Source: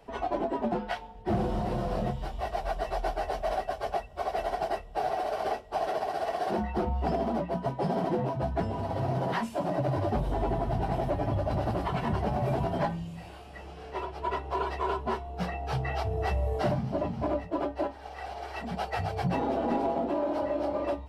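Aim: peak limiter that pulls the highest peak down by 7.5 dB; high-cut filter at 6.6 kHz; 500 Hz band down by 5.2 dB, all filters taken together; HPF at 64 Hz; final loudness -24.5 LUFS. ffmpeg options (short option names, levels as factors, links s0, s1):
-af "highpass=64,lowpass=6600,equalizer=f=500:t=o:g=-7.5,volume=3.98,alimiter=limit=0.188:level=0:latency=1"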